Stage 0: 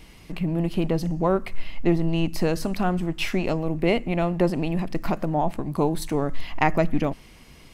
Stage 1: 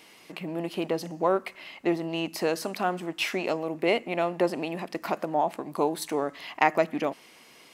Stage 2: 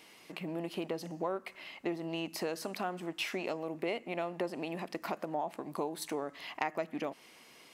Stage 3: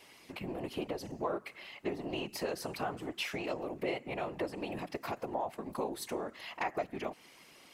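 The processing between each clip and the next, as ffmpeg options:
ffmpeg -i in.wav -af "highpass=380" out.wav
ffmpeg -i in.wav -af "acompressor=threshold=-30dB:ratio=2.5,volume=-4dB" out.wav
ffmpeg -i in.wav -af "afftfilt=real='hypot(re,im)*cos(2*PI*random(0))':imag='hypot(re,im)*sin(2*PI*random(1))':win_size=512:overlap=0.75,volume=5.5dB" out.wav

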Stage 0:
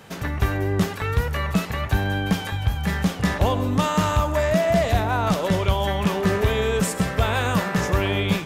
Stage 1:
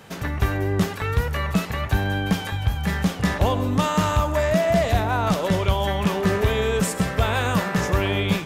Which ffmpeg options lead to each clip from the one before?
ffmpeg -i in.wav -af anull out.wav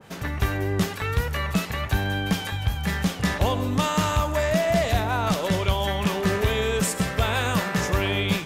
ffmpeg -i in.wav -af "aeval=exprs='0.335*(cos(1*acos(clip(val(0)/0.335,-1,1)))-cos(1*PI/2))+0.0119*(cos(2*acos(clip(val(0)/0.335,-1,1)))-cos(2*PI/2))':channel_layout=same,adynamicequalizer=threshold=0.0141:dfrequency=1800:dqfactor=0.7:tfrequency=1800:tqfactor=0.7:attack=5:release=100:ratio=0.375:range=2:mode=boostabove:tftype=highshelf,volume=-2.5dB" out.wav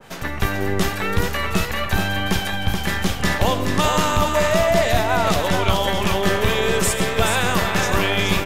ffmpeg -i in.wav -filter_complex "[0:a]acrossover=split=400|6200[link_01][link_02][link_03];[link_01]aeval=exprs='max(val(0),0)':channel_layout=same[link_04];[link_04][link_02][link_03]amix=inputs=3:normalize=0,aecho=1:1:428:0.531,volume=5dB" out.wav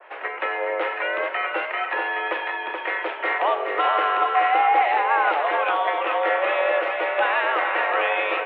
ffmpeg -i in.wav -af "highpass=frequency=300:width_type=q:width=0.5412,highpass=frequency=300:width_type=q:width=1.307,lowpass=frequency=2500:width_type=q:width=0.5176,lowpass=frequency=2500:width_type=q:width=0.7071,lowpass=frequency=2500:width_type=q:width=1.932,afreqshift=140" out.wav

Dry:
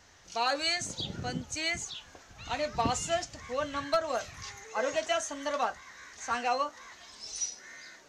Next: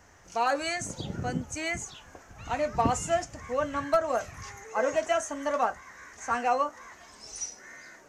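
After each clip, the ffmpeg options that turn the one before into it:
ffmpeg -i in.wav -af "equalizer=frequency=3900:width_type=o:width=1.1:gain=-14,volume=4.5dB" out.wav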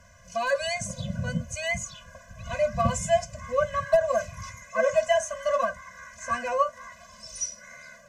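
ffmpeg -i in.wav -af "afftfilt=real='re*eq(mod(floor(b*sr/1024/240),2),0)':imag='im*eq(mod(floor(b*sr/1024/240),2),0)':win_size=1024:overlap=0.75,volume=5dB" out.wav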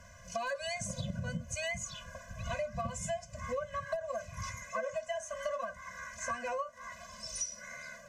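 ffmpeg -i in.wav -af "acompressor=threshold=-33dB:ratio=16" out.wav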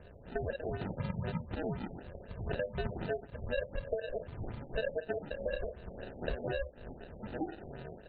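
ffmpeg -i in.wav -af "acrusher=samples=40:mix=1:aa=0.000001,afftfilt=real='re*lt(b*sr/1024,820*pow(4700/820,0.5+0.5*sin(2*PI*4*pts/sr)))':imag='im*lt(b*sr/1024,820*pow(4700/820,0.5+0.5*sin(2*PI*4*pts/sr)))':win_size=1024:overlap=0.75,volume=1dB" out.wav

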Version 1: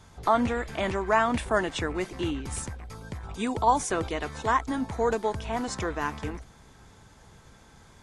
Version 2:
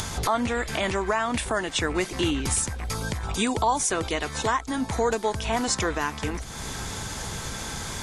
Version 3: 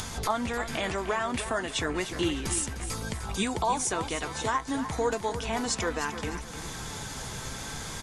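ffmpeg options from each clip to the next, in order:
ffmpeg -i in.wav -af "highshelf=frequency=2600:gain=9.5,acompressor=mode=upward:threshold=-25dB:ratio=2.5,alimiter=limit=-18dB:level=0:latency=1:release=483,volume=5dB" out.wav
ffmpeg -i in.wav -af "flanger=delay=3.9:depth=4.1:regen=66:speed=0.34:shape=triangular,aecho=1:1:303|606|909|1212:0.282|0.104|0.0386|0.0143" out.wav

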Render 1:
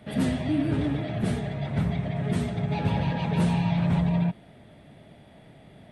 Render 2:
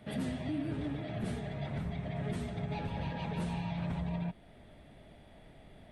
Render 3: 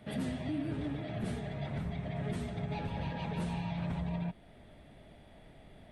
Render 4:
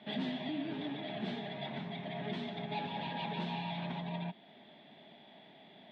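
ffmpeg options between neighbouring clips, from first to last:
ffmpeg -i in.wav -af "asubboost=boost=6.5:cutoff=50,alimiter=limit=-23dB:level=0:latency=1:release=420,volume=-4.5dB" out.wav
ffmpeg -i in.wav -af anull out.wav
ffmpeg -i in.wav -af "highpass=frequency=200:width=0.5412,highpass=frequency=200:width=1.3066,equalizer=frequency=300:width_type=q:width=4:gain=-5,equalizer=frequency=500:width_type=q:width=4:gain=-9,equalizer=frequency=860:width_type=q:width=4:gain=3,equalizer=frequency=1300:width_type=q:width=4:gain=-8,equalizer=frequency=3500:width_type=q:width=4:gain=8,lowpass=frequency=4300:width=0.5412,lowpass=frequency=4300:width=1.3066,volume=2.5dB" out.wav

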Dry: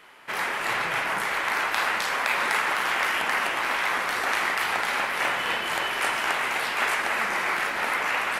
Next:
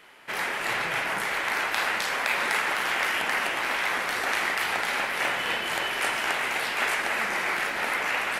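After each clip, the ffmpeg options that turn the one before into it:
ffmpeg -i in.wav -af "equalizer=frequency=1100:width_type=o:width=0.78:gain=-4" out.wav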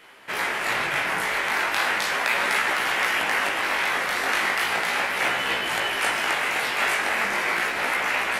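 ffmpeg -i in.wav -af "flanger=delay=15:depth=7.7:speed=0.37,volume=6dB" out.wav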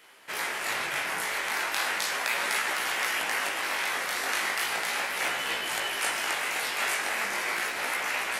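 ffmpeg -i in.wav -af "bass=frequency=250:gain=-4,treble=frequency=4000:gain=8,volume=-6.5dB" out.wav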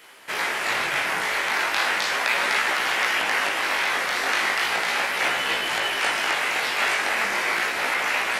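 ffmpeg -i in.wav -filter_complex "[0:a]acrossover=split=5700[link_01][link_02];[link_02]acompressor=threshold=-46dB:ratio=4:attack=1:release=60[link_03];[link_01][link_03]amix=inputs=2:normalize=0,volume=6.5dB" out.wav

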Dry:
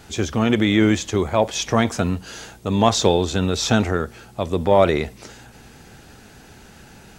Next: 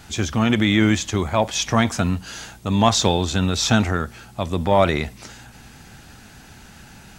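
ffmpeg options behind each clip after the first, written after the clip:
ffmpeg -i in.wav -af "equalizer=frequency=440:width=1.5:gain=-8,volume=2dB" out.wav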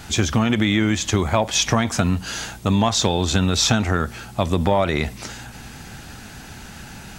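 ffmpeg -i in.wav -af "acompressor=threshold=-20dB:ratio=10,volume=6dB" out.wav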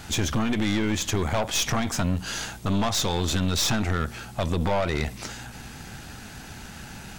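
ffmpeg -i in.wav -af "aeval=exprs='(tanh(10*val(0)+0.55)-tanh(0.55))/10':channel_layout=same" out.wav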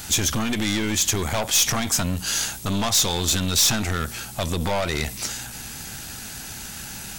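ffmpeg -i in.wav -af "crystalizer=i=3.5:c=0,asoftclip=type=tanh:threshold=-11dB" out.wav

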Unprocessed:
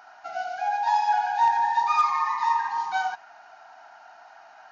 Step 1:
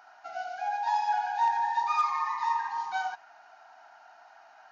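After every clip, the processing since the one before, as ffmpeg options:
ffmpeg -i in.wav -af "highpass=frequency=170:poles=1,volume=-5dB" out.wav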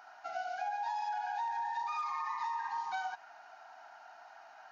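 ffmpeg -i in.wav -af "alimiter=limit=-23dB:level=0:latency=1:release=11,acompressor=threshold=-34dB:ratio=6" out.wav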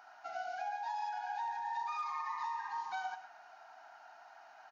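ffmpeg -i in.wav -af "aecho=1:1:115:0.282,volume=-2.5dB" out.wav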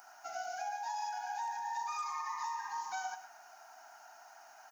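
ffmpeg -i in.wav -af "aexciter=amount=8.5:drive=4.4:freq=5700" out.wav

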